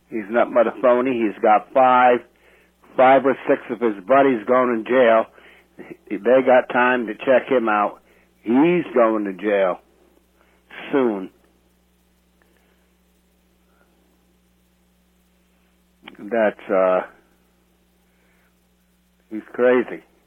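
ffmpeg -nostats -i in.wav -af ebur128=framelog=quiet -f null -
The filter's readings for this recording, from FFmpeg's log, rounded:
Integrated loudness:
  I:         -18.2 LUFS
  Threshold: -31.0 LUFS
Loudness range:
  LRA:        11.8 LU
  Threshold: -41.1 LUFS
  LRA low:   -29.3 LUFS
  LRA high:  -17.6 LUFS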